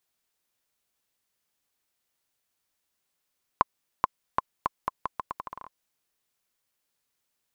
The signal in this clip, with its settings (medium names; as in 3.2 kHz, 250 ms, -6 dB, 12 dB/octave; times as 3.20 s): bouncing ball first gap 0.43 s, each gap 0.8, 1.04 kHz, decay 22 ms -5.5 dBFS